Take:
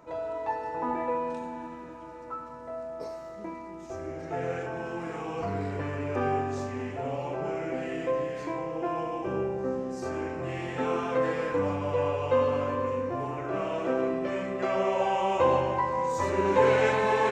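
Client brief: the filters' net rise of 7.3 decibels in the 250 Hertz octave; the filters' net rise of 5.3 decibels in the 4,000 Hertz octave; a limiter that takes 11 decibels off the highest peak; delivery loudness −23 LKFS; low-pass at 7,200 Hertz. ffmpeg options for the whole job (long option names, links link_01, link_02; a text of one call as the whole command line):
ffmpeg -i in.wav -af "lowpass=7200,equalizer=frequency=250:width_type=o:gain=9,equalizer=frequency=4000:width_type=o:gain=8,volume=6.5dB,alimiter=limit=-13dB:level=0:latency=1" out.wav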